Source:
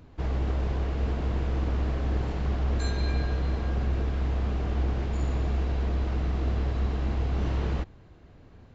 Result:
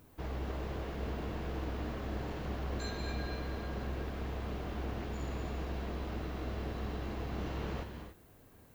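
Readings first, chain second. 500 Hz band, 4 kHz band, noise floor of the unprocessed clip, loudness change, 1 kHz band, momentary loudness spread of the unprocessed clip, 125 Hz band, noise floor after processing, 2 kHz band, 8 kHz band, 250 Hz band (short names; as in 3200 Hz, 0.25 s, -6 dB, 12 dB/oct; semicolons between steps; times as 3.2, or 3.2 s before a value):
-5.0 dB, -4.5 dB, -52 dBFS, -10.5 dB, -5.0 dB, 1 LU, -12.5 dB, -60 dBFS, -4.5 dB, n/a, -6.5 dB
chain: low shelf 140 Hz -8 dB; added noise violet -63 dBFS; non-linear reverb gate 0.31 s rising, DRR 6 dB; gain -5.5 dB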